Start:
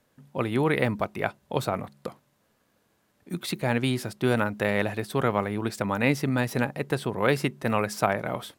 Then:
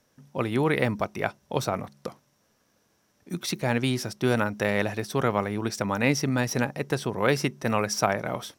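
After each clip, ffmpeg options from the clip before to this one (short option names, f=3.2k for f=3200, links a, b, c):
-af "equalizer=f=5.7k:t=o:w=0.25:g=13.5"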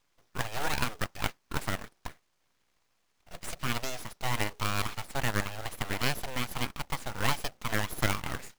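-filter_complex "[0:a]acrossover=split=310 5800:gain=0.0794 1 0.0708[a][b][c];[a][b][c]amix=inputs=3:normalize=0,aeval=exprs='abs(val(0))':c=same,acrusher=bits=2:mode=log:mix=0:aa=0.000001,volume=-2dB"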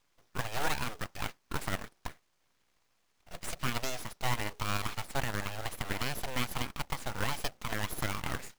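-af "alimiter=limit=-19.5dB:level=0:latency=1:release=50"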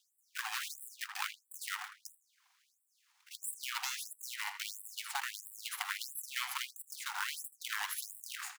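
-filter_complex "[0:a]acompressor=threshold=-32dB:ratio=6,asplit=2[a][b];[b]adelay=80,lowpass=f=3.3k:p=1,volume=-7.5dB,asplit=2[c][d];[d]adelay=80,lowpass=f=3.3k:p=1,volume=0.44,asplit=2[e][f];[f]adelay=80,lowpass=f=3.3k:p=1,volume=0.44,asplit=2[g][h];[h]adelay=80,lowpass=f=3.3k:p=1,volume=0.44,asplit=2[i][j];[j]adelay=80,lowpass=f=3.3k:p=1,volume=0.44[k];[c][e][g][i][k]amix=inputs=5:normalize=0[l];[a][l]amix=inputs=2:normalize=0,afftfilt=real='re*gte(b*sr/1024,710*pow(7700/710,0.5+0.5*sin(2*PI*1.5*pts/sr)))':imag='im*gte(b*sr/1024,710*pow(7700/710,0.5+0.5*sin(2*PI*1.5*pts/sr)))':win_size=1024:overlap=0.75,volume=5dB"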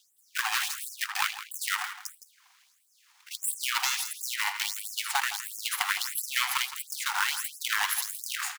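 -filter_complex "[0:a]asplit=2[a][b];[b]asoftclip=type=hard:threshold=-29dB,volume=-8.5dB[c];[a][c]amix=inputs=2:normalize=0,aecho=1:1:165:0.224,volume=7.5dB"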